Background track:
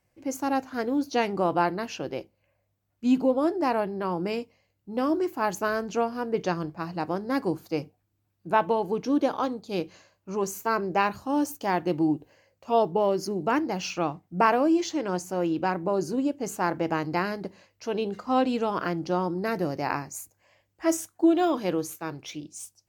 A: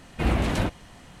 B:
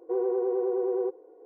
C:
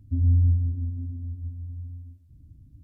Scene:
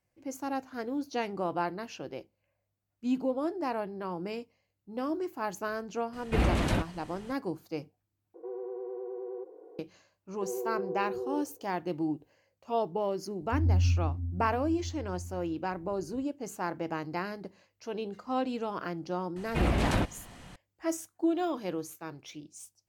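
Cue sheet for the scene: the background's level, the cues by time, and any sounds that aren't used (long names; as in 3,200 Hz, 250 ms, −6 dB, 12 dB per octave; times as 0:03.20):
background track −7.5 dB
0:06.13: mix in A −3 dB
0:08.34: overwrite with B −12.5 dB + envelope flattener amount 50%
0:10.32: mix in B −8 dB + low-pass filter 1,100 Hz
0:13.41: mix in C −5.5 dB
0:19.36: mix in A −1.5 dB + brickwall limiter −15.5 dBFS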